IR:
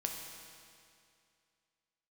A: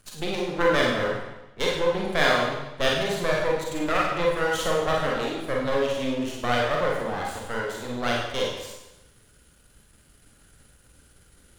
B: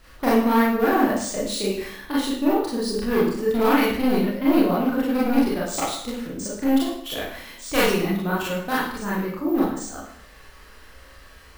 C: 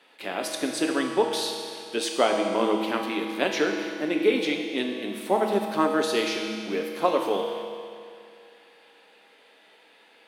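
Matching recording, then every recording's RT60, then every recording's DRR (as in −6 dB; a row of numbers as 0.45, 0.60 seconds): C; 1.0, 0.65, 2.4 seconds; −3.0, −8.0, 1.0 decibels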